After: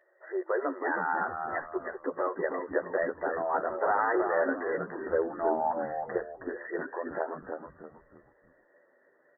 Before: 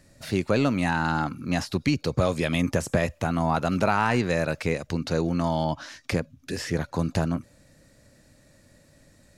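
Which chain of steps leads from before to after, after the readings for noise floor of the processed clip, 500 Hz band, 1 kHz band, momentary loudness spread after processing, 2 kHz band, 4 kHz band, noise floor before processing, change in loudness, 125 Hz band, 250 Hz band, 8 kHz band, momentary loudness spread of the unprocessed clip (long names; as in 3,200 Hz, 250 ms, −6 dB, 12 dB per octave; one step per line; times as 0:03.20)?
−66 dBFS, −1.5 dB, −2.0 dB, 10 LU, −3.5 dB, below −40 dB, −59 dBFS, −5.5 dB, −26.5 dB, −11.5 dB, below −40 dB, 7 LU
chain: brick-wall band-pass 330–2,000 Hz
multi-voice chorus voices 6, 0.38 Hz, delay 12 ms, depth 1.9 ms
echo with shifted repeats 317 ms, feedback 34%, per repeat −95 Hz, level −5.5 dB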